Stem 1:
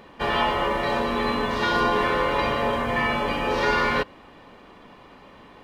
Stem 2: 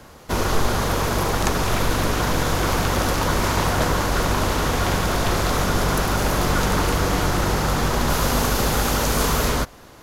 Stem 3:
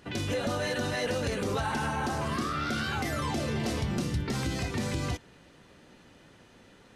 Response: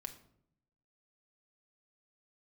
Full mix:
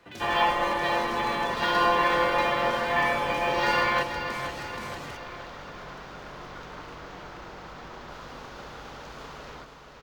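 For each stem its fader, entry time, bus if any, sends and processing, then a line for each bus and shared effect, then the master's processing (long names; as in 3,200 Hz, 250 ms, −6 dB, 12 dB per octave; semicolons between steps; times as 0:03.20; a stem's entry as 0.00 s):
−2.5 dB, 0.00 s, no send, echo send −9 dB, comb filter 5.8 ms, depth 96%; expander for the loud parts 1.5 to 1, over −38 dBFS
−18.5 dB, 0.00 s, no send, echo send −7 dB, low-pass filter 4,000 Hz 12 dB per octave
−5.0 dB, 0.00 s, no send, no echo send, wave folding −26.5 dBFS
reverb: not used
echo: repeating echo 477 ms, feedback 52%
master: low-shelf EQ 310 Hz −9 dB; linearly interpolated sample-rate reduction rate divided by 2×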